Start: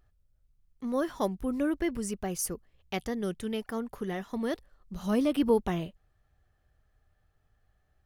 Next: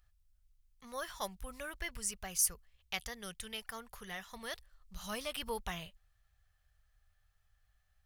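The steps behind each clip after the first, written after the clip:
guitar amp tone stack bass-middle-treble 10-0-10
level +3.5 dB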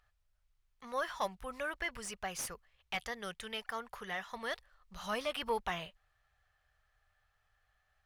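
mid-hump overdrive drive 18 dB, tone 1,200 Hz, clips at −15 dBFS
level −1.5 dB

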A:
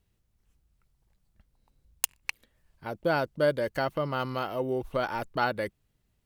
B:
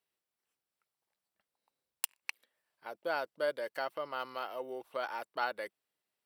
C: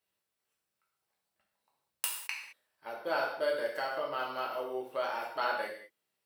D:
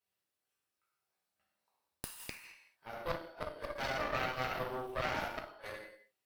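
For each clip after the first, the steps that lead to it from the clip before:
high-pass filter 530 Hz 12 dB per octave; notch filter 6,600 Hz, Q 7.4; level −6 dB
reverb whose tail is shaped and stops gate 240 ms falling, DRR −3 dB; level −1 dB
gate with flip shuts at −22 dBFS, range −33 dB; reverb whose tail is shaped and stops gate 260 ms falling, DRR −1.5 dB; harmonic generator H 6 −9 dB, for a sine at −14 dBFS; level −7 dB

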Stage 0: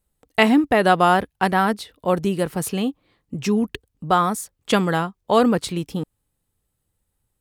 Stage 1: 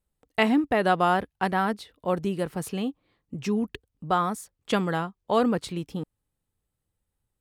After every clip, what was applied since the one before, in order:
high-shelf EQ 5,500 Hz −5.5 dB
level −6 dB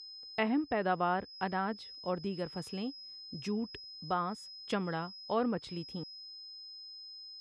steady tone 5,100 Hz −37 dBFS
treble cut that deepens with the level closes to 2,700 Hz, closed at −19.5 dBFS
level −9 dB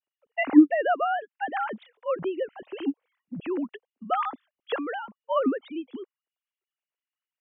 three sine waves on the formant tracks
level +8.5 dB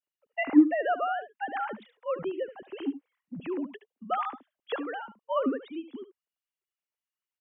single-tap delay 73 ms −13.5 dB
level −3.5 dB

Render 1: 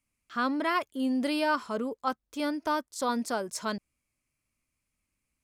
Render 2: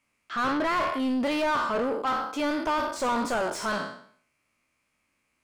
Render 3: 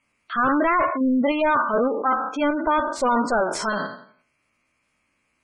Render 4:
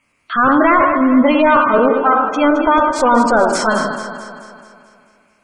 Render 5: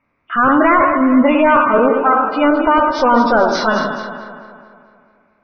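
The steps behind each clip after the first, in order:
peak hold with a decay on every bin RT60 0.55 s; mid-hump overdrive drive 24 dB, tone 1,700 Hz, clips at −14.5 dBFS; level −3.5 dB
gate on every frequency bin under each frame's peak −20 dB strong; in parallel at +2.5 dB: output level in coarse steps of 9 dB
delay that swaps between a low-pass and a high-pass 109 ms, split 1,300 Hz, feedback 73%, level −6 dB; level +7.5 dB
hearing-aid frequency compression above 2,300 Hz 1.5 to 1; low-pass that shuts in the quiet parts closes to 1,600 Hz, open at −13 dBFS

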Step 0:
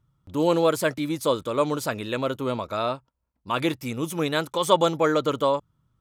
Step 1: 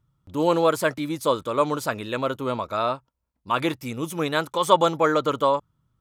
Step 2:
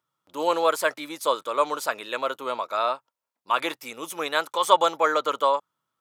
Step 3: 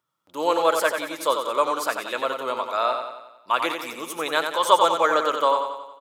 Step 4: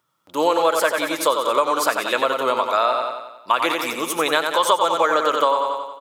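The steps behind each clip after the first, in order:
dynamic equaliser 1,100 Hz, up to +5 dB, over −34 dBFS, Q 0.97; level −1 dB
high-pass filter 570 Hz 12 dB per octave; level +1 dB
repeating echo 91 ms, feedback 53%, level −6.5 dB; level +1 dB
downward compressor 5 to 1, threshold −23 dBFS, peak gain reduction 12 dB; level +8.5 dB

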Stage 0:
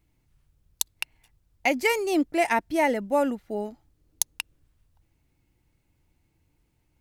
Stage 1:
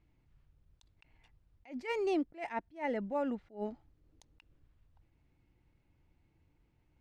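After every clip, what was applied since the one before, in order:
Bessel low-pass filter 2,800 Hz, order 2
downward compressor 12 to 1, threshold −27 dBFS, peak gain reduction 9.5 dB
level that may rise only so fast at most 210 dB per second
level −1.5 dB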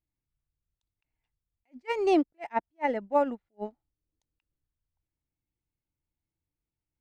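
dynamic equaliser 830 Hz, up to +4 dB, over −48 dBFS, Q 1.1
expander for the loud parts 2.5 to 1, over −47 dBFS
level +9 dB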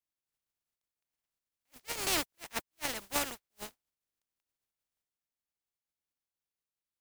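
compressing power law on the bin magnitudes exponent 0.23
level −8 dB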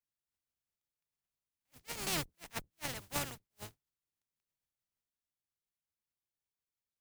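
sub-octave generator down 1 octave, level +4 dB
level −5 dB

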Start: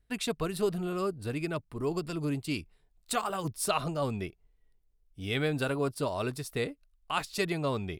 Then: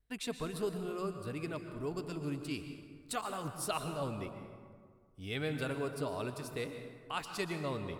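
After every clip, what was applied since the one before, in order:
pitch vibrato 1.7 Hz 23 cents
on a send at −7 dB: convolution reverb RT60 1.9 s, pre-delay 107 ms
on the sum: level −7 dB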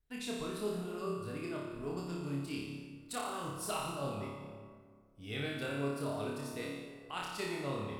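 flutter between parallel walls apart 4.9 metres, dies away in 0.82 s
level −4.5 dB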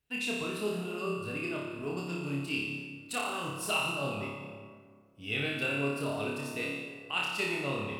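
high-pass filter 90 Hz
parametric band 2,700 Hz +14 dB 0.24 octaves
level +3.5 dB

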